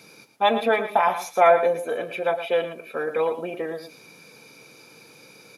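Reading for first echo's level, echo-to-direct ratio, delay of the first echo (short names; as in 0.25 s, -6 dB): -11.0 dB, -11.0 dB, 0.113 s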